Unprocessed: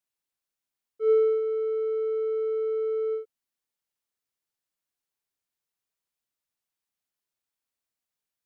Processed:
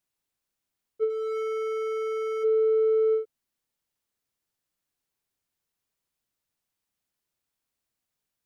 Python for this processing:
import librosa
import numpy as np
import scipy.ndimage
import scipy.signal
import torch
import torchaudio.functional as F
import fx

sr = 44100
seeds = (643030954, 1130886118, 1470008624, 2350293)

y = fx.low_shelf(x, sr, hz=330.0, db=6.5)
y = fx.over_compress(y, sr, threshold_db=-24.0, ratio=-1.0)
y = fx.clip_hard(y, sr, threshold_db=-30.5, at=(1.09, 2.43), fade=0.02)
y = y * librosa.db_to_amplitude(2.0)